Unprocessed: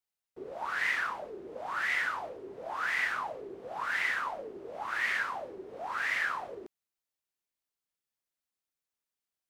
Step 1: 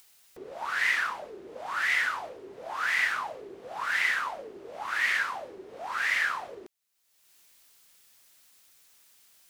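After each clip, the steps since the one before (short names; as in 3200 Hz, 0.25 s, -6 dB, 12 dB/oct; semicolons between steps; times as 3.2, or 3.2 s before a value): upward compressor, threshold -47 dBFS; tilt shelf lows -4.5 dB, about 1400 Hz; gain +3 dB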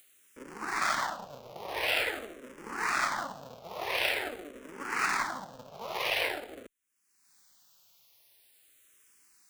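cycle switcher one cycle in 3, inverted; endless phaser -0.46 Hz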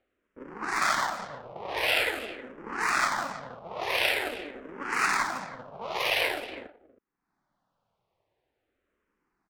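echo 0.319 s -16.5 dB; low-pass opened by the level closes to 780 Hz, open at -30.5 dBFS; gain +3.5 dB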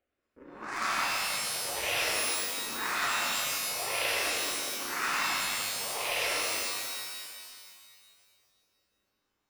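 shimmer reverb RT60 2 s, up +12 st, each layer -2 dB, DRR -2 dB; gain -8.5 dB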